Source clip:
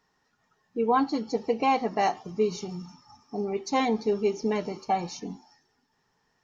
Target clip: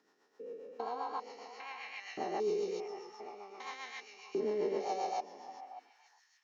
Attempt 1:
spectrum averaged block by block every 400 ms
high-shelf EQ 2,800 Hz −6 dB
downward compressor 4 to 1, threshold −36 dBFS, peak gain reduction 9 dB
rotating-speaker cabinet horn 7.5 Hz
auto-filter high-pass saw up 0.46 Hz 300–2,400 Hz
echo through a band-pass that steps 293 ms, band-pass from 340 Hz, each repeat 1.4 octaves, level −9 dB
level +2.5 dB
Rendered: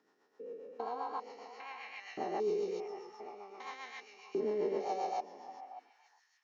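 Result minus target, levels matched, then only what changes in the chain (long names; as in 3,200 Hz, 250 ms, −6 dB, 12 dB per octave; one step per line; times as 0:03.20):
4,000 Hz band −3.5 dB
remove: high-shelf EQ 2,800 Hz −6 dB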